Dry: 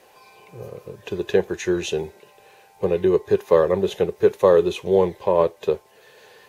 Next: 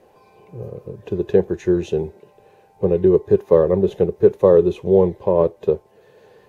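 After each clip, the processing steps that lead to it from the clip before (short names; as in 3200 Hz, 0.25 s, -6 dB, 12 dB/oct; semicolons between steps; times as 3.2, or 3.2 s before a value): tilt shelf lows +9.5 dB, about 850 Hz; gain -2 dB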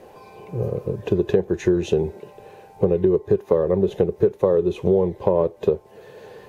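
compressor 6:1, threshold -23 dBFS, peak gain reduction 15.5 dB; gain +7.5 dB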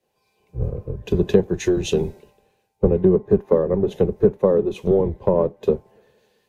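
octaver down 1 oct, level -3 dB; three-band expander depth 100%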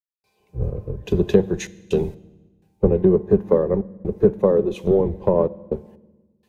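step gate ".xxxxxx.x..xxxxx" 63 bpm -60 dB; on a send at -18 dB: reverb RT60 1.2 s, pre-delay 5 ms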